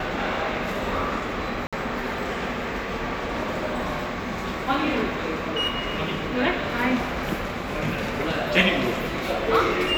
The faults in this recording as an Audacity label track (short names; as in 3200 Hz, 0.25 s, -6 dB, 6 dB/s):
1.670000	1.730000	gap 56 ms